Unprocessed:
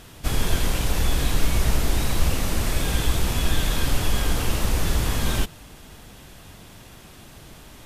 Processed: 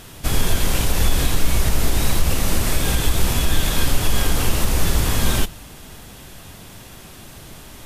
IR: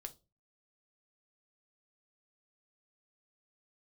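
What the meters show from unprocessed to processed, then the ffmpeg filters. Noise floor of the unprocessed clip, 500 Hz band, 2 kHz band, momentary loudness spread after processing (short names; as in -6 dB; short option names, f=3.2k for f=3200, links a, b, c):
-46 dBFS, +3.5 dB, +3.5 dB, 19 LU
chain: -filter_complex "[0:a]alimiter=limit=-12dB:level=0:latency=1:release=113,asplit=2[a][b];[1:a]atrim=start_sample=2205,highshelf=f=5k:g=11.5[c];[b][c]afir=irnorm=-1:irlink=0,volume=-5dB[d];[a][d]amix=inputs=2:normalize=0,volume=2dB"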